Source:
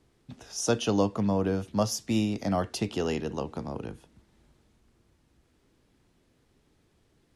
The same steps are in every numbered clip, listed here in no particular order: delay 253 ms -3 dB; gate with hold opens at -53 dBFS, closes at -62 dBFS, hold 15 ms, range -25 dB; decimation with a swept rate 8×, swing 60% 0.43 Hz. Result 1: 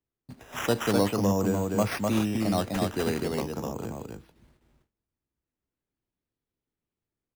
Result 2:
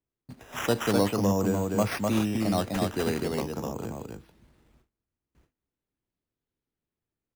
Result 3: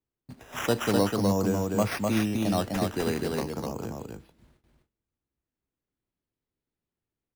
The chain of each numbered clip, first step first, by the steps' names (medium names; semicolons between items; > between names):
gate with hold > delay > decimation with a swept rate; delay > decimation with a swept rate > gate with hold; decimation with a swept rate > gate with hold > delay